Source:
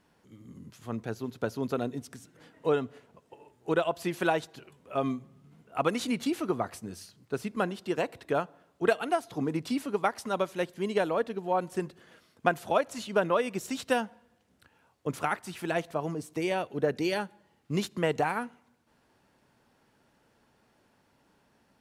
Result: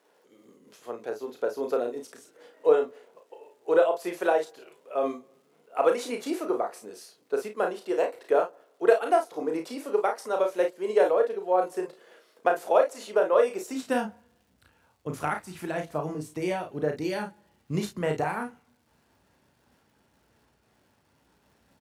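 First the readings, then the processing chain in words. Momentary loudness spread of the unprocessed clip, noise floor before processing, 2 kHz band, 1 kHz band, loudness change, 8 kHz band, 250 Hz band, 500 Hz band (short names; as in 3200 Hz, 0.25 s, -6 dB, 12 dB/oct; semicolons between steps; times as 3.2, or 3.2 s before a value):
13 LU, -68 dBFS, -1.0 dB, +2.5 dB, +3.5 dB, -0.5 dB, -1.5 dB, +5.5 dB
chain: on a send: early reflections 33 ms -5.5 dB, 52 ms -10 dB; on the sum: crackle 430/s -59 dBFS; dynamic EQ 3200 Hz, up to -5 dB, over -51 dBFS, Q 1.4; high-pass sweep 460 Hz -> 61 Hz, 13.65–14.22; noise-modulated level, depth 55%; gain +1.5 dB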